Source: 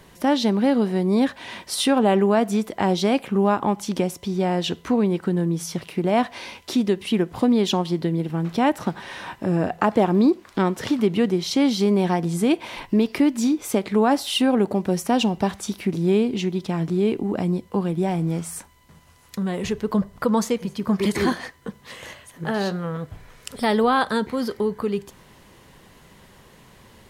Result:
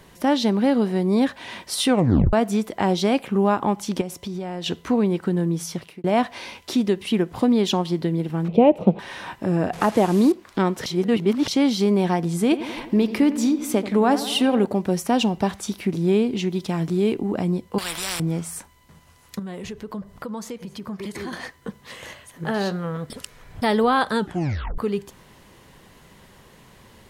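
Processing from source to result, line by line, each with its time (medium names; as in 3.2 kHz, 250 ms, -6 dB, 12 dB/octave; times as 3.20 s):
1.88 s: tape stop 0.45 s
4.01–4.66 s: compression, threshold -26 dBFS
5.58–6.04 s: fade out equal-power
8.48–8.99 s: FFT filter 130 Hz 0 dB, 190 Hz +11 dB, 270 Hz +1 dB, 500 Hz +13 dB, 1.7 kHz -21 dB, 2.5 kHz +1 dB, 5.5 kHz -21 dB
9.73–10.32 s: one-bit delta coder 64 kbps, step -30 dBFS
10.86–11.48 s: reverse
12.43–14.66 s: filtered feedback delay 86 ms, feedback 70%, low-pass 2.5 kHz, level -13 dB
16.51–17.14 s: treble shelf 4.1 kHz +5.5 dB
17.78–18.20 s: spectrum-flattening compressor 10:1
19.39–21.33 s: compression 2.5:1, threshold -34 dBFS
23.10–23.62 s: reverse
24.19 s: tape stop 0.59 s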